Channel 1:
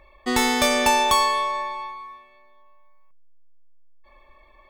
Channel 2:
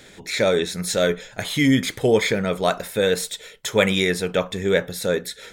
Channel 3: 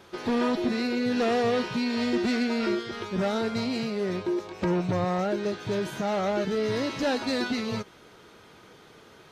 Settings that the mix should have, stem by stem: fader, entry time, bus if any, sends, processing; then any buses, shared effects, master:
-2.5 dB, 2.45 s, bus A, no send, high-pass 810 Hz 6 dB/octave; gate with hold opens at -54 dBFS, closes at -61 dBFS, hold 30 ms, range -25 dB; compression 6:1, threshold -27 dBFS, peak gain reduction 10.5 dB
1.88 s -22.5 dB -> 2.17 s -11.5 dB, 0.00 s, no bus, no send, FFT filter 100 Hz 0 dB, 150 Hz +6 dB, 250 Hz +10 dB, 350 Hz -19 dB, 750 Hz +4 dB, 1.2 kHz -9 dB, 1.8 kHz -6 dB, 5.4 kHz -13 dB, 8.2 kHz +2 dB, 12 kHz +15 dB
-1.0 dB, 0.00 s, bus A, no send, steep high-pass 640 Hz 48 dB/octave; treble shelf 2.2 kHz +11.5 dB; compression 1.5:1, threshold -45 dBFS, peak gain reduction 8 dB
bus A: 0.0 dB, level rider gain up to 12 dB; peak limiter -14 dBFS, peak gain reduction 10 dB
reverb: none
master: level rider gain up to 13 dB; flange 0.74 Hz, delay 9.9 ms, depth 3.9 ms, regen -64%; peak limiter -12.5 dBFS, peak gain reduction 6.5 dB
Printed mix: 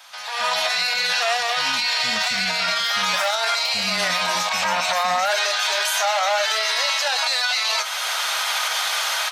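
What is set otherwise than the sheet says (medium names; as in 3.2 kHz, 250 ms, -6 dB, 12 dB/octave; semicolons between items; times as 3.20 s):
stem 1: muted; stem 2 -22.5 dB -> -32.5 dB; stem 3 -1.0 dB -> +7.5 dB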